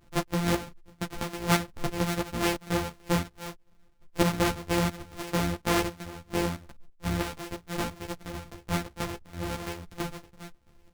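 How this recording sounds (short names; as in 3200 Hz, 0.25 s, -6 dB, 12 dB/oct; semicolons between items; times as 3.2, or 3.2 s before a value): a buzz of ramps at a fixed pitch in blocks of 256 samples; chopped level 3 Hz, depth 65%, duty 65%; a shimmering, thickened sound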